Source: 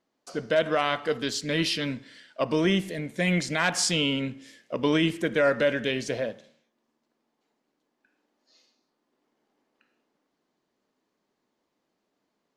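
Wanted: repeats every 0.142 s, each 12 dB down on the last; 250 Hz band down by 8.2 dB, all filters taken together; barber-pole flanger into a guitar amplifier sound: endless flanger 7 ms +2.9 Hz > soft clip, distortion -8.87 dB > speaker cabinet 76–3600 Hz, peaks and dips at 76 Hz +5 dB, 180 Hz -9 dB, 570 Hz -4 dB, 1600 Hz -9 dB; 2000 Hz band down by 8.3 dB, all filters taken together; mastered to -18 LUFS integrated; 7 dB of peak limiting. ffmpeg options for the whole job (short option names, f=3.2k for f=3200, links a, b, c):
-filter_complex "[0:a]equalizer=f=250:t=o:g=-9,equalizer=f=2k:t=o:g=-6,alimiter=limit=-21dB:level=0:latency=1,aecho=1:1:142|284|426:0.251|0.0628|0.0157,asplit=2[a][b];[b]adelay=7,afreqshift=2.9[c];[a][c]amix=inputs=2:normalize=1,asoftclip=threshold=-35dB,highpass=76,equalizer=f=76:t=q:w=4:g=5,equalizer=f=180:t=q:w=4:g=-9,equalizer=f=570:t=q:w=4:g=-4,equalizer=f=1.6k:t=q:w=4:g=-9,lowpass=f=3.6k:w=0.5412,lowpass=f=3.6k:w=1.3066,volume=25dB"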